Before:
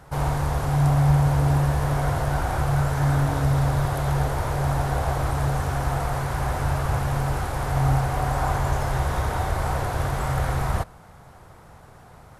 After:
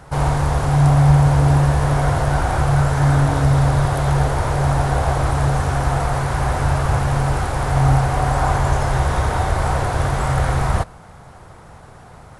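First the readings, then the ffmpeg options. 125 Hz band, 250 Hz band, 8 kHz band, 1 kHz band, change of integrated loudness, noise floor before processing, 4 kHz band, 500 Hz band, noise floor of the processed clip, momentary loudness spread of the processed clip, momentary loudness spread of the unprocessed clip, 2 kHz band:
+6.0 dB, +6.0 dB, +5.5 dB, +6.0 dB, +6.0 dB, -48 dBFS, +6.0 dB, +6.0 dB, -42 dBFS, 6 LU, 6 LU, +6.0 dB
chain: -af "volume=6dB" -ar 24000 -c:a aac -b:a 96k

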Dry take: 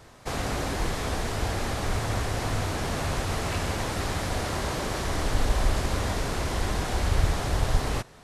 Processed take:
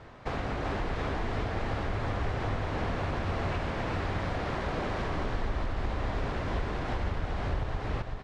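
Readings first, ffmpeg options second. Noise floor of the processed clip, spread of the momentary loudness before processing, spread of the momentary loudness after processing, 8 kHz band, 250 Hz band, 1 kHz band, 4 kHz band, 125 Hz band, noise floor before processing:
-38 dBFS, 3 LU, 2 LU, -20.5 dB, -3.0 dB, -3.0 dB, -10.0 dB, -4.0 dB, -50 dBFS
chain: -filter_complex "[0:a]acompressor=threshold=-31dB:ratio=6,lowpass=2.7k,asplit=2[a][b];[b]aecho=0:1:385:0.631[c];[a][c]amix=inputs=2:normalize=0,volume=2dB"

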